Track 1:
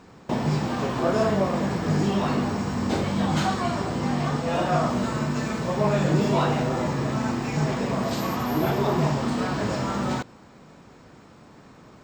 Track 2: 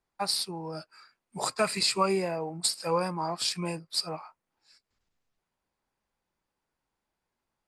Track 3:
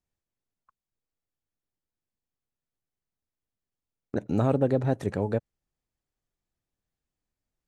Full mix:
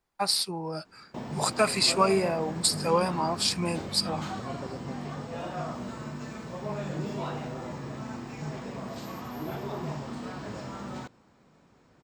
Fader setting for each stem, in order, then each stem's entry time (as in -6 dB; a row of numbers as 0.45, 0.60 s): -12.0, +3.0, -17.5 dB; 0.85, 0.00, 0.00 s